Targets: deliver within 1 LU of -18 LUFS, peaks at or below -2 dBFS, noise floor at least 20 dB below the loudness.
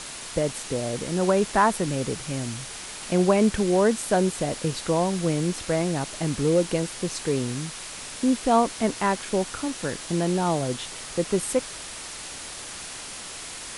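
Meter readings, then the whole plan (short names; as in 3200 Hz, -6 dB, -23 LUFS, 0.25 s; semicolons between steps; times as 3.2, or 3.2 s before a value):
noise floor -38 dBFS; noise floor target -46 dBFS; loudness -25.5 LUFS; peak -7.5 dBFS; loudness target -18.0 LUFS
-> noise print and reduce 8 dB; gain +7.5 dB; limiter -2 dBFS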